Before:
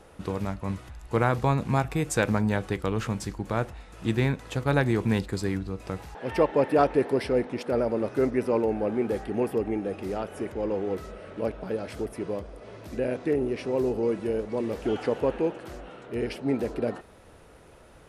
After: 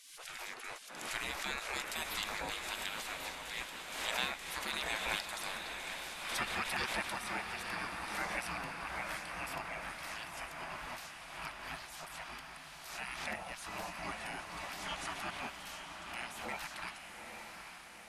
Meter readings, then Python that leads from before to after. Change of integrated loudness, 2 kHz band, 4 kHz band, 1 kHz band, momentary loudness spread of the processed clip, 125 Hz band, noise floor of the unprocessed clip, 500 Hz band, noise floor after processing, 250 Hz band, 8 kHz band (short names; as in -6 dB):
-12.0 dB, -1.5 dB, +3.5 dB, -8.0 dB, 10 LU, -25.0 dB, -52 dBFS, -22.5 dB, -51 dBFS, -23.5 dB, n/a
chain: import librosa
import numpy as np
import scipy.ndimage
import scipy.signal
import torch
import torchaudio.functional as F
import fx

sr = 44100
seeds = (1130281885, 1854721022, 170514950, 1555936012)

p1 = fx.spec_gate(x, sr, threshold_db=-25, keep='weak')
p2 = p1 + fx.echo_diffused(p1, sr, ms=852, feedback_pct=53, wet_db=-5.5, dry=0)
p3 = fx.pre_swell(p2, sr, db_per_s=51.0)
y = p3 * 10.0 ** (4.0 / 20.0)